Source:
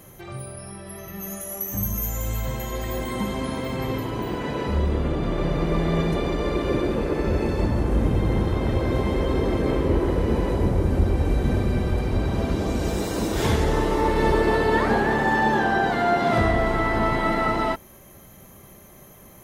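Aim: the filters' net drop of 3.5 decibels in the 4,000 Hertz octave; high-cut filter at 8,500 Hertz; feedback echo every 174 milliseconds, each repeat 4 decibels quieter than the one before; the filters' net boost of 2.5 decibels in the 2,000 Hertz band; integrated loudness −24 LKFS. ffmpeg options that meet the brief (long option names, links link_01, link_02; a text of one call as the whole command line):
ffmpeg -i in.wav -af "lowpass=8500,equalizer=frequency=2000:width_type=o:gain=4,equalizer=frequency=4000:width_type=o:gain=-6,aecho=1:1:174|348|522|696|870|1044|1218|1392|1566:0.631|0.398|0.25|0.158|0.0994|0.0626|0.0394|0.0249|0.0157,volume=-3dB" out.wav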